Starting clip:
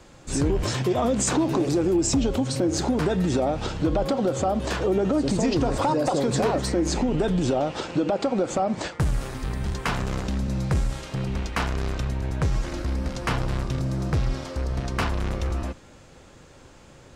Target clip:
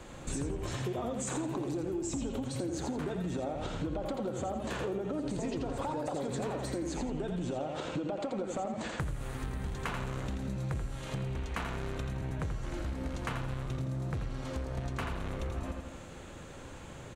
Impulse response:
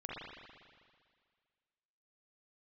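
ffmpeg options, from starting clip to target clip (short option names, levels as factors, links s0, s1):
-filter_complex "[0:a]asplit=2[s0][s1];[s1]aecho=0:1:84|168|252|336:0.531|0.181|0.0614|0.0209[s2];[s0][s2]amix=inputs=2:normalize=0,acompressor=threshold=0.0178:ratio=6,equalizer=f=5100:t=o:w=0.37:g=-9,volume=1.19"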